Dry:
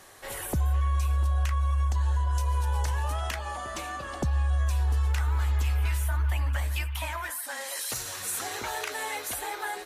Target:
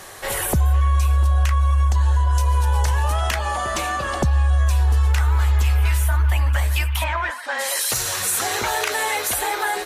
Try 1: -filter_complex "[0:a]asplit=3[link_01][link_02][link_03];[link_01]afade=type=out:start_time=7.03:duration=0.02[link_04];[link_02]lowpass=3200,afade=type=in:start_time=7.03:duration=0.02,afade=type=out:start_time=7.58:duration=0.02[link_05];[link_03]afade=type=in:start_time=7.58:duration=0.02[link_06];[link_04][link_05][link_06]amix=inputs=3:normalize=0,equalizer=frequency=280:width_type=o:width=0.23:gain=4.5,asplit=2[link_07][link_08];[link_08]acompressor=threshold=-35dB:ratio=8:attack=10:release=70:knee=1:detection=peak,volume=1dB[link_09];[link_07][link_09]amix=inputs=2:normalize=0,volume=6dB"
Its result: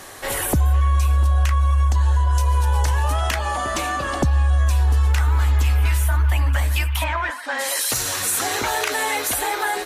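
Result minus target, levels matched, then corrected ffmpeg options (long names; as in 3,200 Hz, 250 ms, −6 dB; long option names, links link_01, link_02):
250 Hz band +2.5 dB
-filter_complex "[0:a]asplit=3[link_01][link_02][link_03];[link_01]afade=type=out:start_time=7.03:duration=0.02[link_04];[link_02]lowpass=3200,afade=type=in:start_time=7.03:duration=0.02,afade=type=out:start_time=7.58:duration=0.02[link_05];[link_03]afade=type=in:start_time=7.58:duration=0.02[link_06];[link_04][link_05][link_06]amix=inputs=3:normalize=0,equalizer=frequency=280:width_type=o:width=0.23:gain=-7,asplit=2[link_07][link_08];[link_08]acompressor=threshold=-35dB:ratio=8:attack=10:release=70:knee=1:detection=peak,volume=1dB[link_09];[link_07][link_09]amix=inputs=2:normalize=0,volume=6dB"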